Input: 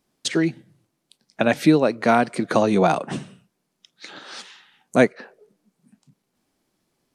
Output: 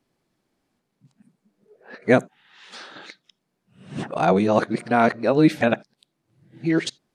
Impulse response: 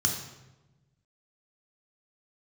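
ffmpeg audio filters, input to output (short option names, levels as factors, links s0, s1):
-filter_complex "[0:a]areverse,highshelf=f=4700:g=-8.5,asplit=2[s0][s1];[1:a]atrim=start_sample=2205,atrim=end_sample=3969,lowpass=5700[s2];[s1][s2]afir=irnorm=-1:irlink=0,volume=0.0422[s3];[s0][s3]amix=inputs=2:normalize=0"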